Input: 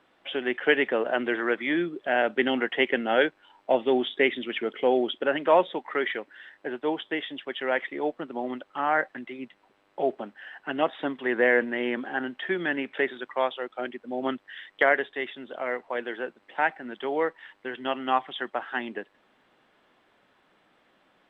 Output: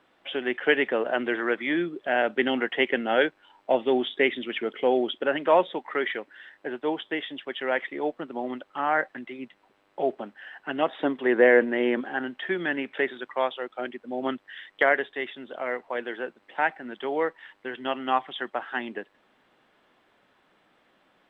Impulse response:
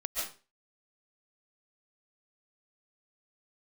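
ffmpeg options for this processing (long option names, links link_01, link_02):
-filter_complex "[0:a]asettb=1/sr,asplit=3[link_01][link_02][link_03];[link_01]atrim=end=10.904[link_04];[link_02]atrim=start=10.9:end=12.01,asetpts=PTS-STARTPTS,afade=type=in:duration=0.004:curve=qsin,afade=type=out:start_time=1.106:duration=0.004:curve=qsin,equalizer=frequency=420:width=0.66:gain=5.5[link_05];[link_03]atrim=start=12.006[link_06];[link_04][link_05]acrossfade=duration=0.004:curve1=hsin:curve2=qsin[link_07];[link_07][link_06]acrossfade=duration=0.004:curve1=qsin:curve2=hsin"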